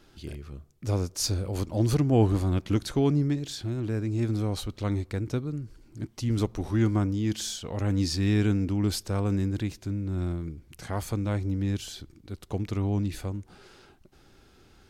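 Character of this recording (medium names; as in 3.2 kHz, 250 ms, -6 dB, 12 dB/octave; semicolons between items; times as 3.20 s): noise floor -58 dBFS; spectral tilt -7.0 dB/octave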